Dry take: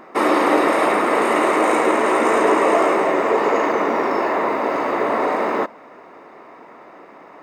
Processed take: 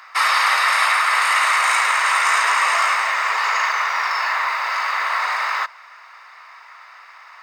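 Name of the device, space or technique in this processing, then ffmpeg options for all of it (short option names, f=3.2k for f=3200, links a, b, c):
headphones lying on a table: -af "highpass=f=1.2k:w=0.5412,highpass=f=1.2k:w=1.3066,equalizer=f=4.8k:t=o:w=0.6:g=8.5,volume=6.5dB"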